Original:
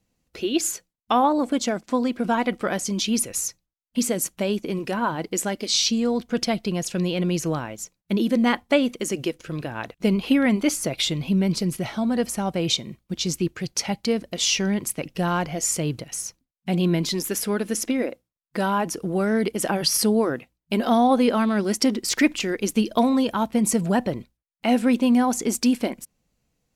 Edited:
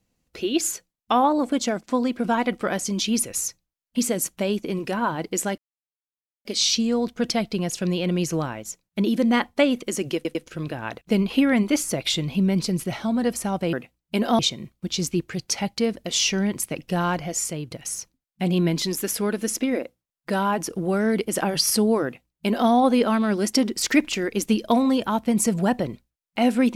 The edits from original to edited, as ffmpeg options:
-filter_complex "[0:a]asplit=7[a][b][c][d][e][f][g];[a]atrim=end=5.58,asetpts=PTS-STARTPTS,afade=t=out:st=5.576:d=0.004:c=hsin,apad=pad_dur=0.87[h];[b]atrim=start=5.58:end=9.382,asetpts=PTS-STARTPTS,afade=t=in:d=0.004:c=hsin[i];[c]atrim=start=9.278:end=9.382[j];[d]atrim=start=9.278:end=12.662[k];[e]atrim=start=20.308:end=20.972[l];[f]atrim=start=12.658:end=15.98,asetpts=PTS-STARTPTS,afade=t=out:st=2.632:d=0.69:c=qsin:silence=0.316228[m];[g]atrim=start=15.98,asetpts=PTS-STARTPTS,afade=t=in:d=0.004:c=hsin:silence=0.316228[n];[h][i]concat=n=2:v=0:a=1[o];[o][j]acrossfade=d=0.004:c1=hsin:c2=hsin[p];[p][k]acrossfade=d=0.004:c1=hsin:c2=hsin[q];[q][l]acrossfade=d=0.004:c1=hsin:c2=hsin[r];[m][n]concat=n=2:v=0:a=1[s];[r][s]acrossfade=d=0.004:c1=hsin:c2=hsin"

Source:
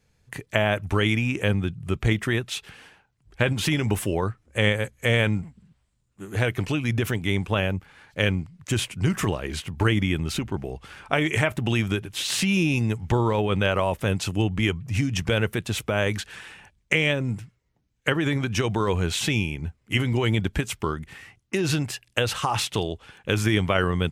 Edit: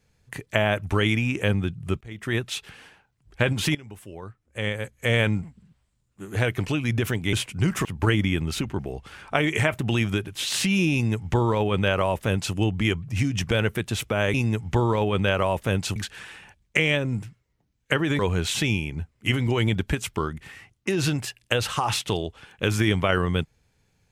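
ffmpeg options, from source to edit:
-filter_complex "[0:a]asplit=8[a][b][c][d][e][f][g][h];[a]atrim=end=2.01,asetpts=PTS-STARTPTS,afade=t=out:st=2.006:d=0.004:c=hsin:silence=0.0668344[i];[b]atrim=start=2.01:end=3.75,asetpts=PTS-STARTPTS,afade=t=in:d=0.35:c=qua:silence=0.0668344,afade=t=out:st=1.736:d=0.004:c=hsin:silence=0.112202[j];[c]atrim=start=3.75:end=7.332,asetpts=PTS-STARTPTS,afade=t=in:d=1.44:c=qua:silence=0.112202[k];[d]atrim=start=8.748:end=9.272[l];[e]atrim=start=9.628:end=16.122[m];[f]atrim=start=12.708:end=14.332[n];[g]atrim=start=16.118:end=18.352[o];[h]atrim=start=18.848[p];[i][j][k]concat=n=3:v=0:a=1[q];[q][l]acrossfade=d=0.004:c1=hsin:c2=hsin[r];[r][m]acrossfade=d=0.004:c1=hsin:c2=hsin[s];[s][n]acrossfade=d=0.004:c1=hsin:c2=hsin[t];[t][o]acrossfade=d=0.004:c1=hsin:c2=hsin[u];[u][p]acrossfade=d=0.004:c1=hsin:c2=hsin"

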